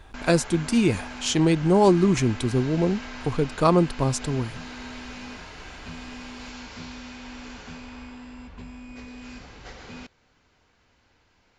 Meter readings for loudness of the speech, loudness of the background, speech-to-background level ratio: −22.5 LKFS, −39.5 LKFS, 17.0 dB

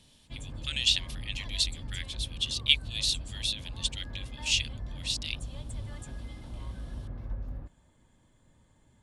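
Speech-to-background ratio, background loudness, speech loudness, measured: 12.0 dB, −42.0 LKFS, −30.0 LKFS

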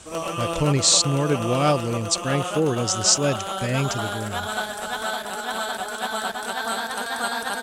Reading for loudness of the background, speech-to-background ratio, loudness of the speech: −28.0 LKFS, 6.5 dB, −21.5 LKFS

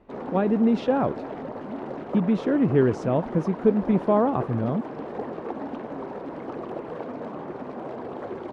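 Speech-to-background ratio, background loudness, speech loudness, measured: 11.5 dB, −35.0 LKFS, −23.5 LKFS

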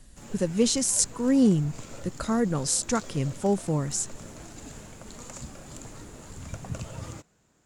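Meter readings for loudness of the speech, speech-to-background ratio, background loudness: −25.5 LKFS, 17.5 dB, −43.0 LKFS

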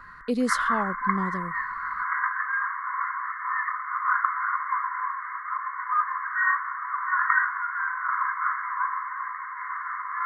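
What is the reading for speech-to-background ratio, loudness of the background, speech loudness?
−2.5 dB, −27.5 LKFS, −30.0 LKFS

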